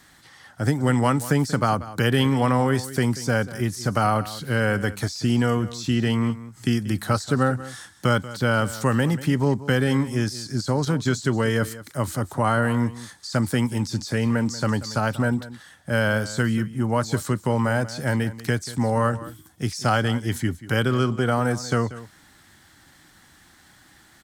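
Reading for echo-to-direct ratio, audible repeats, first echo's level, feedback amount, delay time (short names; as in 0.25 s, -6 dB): -16.0 dB, 1, -16.0 dB, no steady repeat, 0.186 s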